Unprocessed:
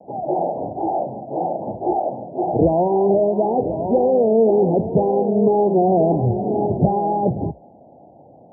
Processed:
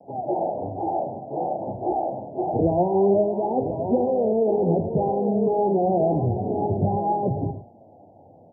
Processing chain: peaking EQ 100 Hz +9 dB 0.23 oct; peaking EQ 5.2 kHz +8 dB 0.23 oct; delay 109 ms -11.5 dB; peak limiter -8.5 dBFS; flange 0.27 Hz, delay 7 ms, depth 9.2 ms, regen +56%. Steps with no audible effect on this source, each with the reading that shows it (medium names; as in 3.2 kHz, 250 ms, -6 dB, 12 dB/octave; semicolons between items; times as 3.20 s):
peaking EQ 5.2 kHz: input has nothing above 1 kHz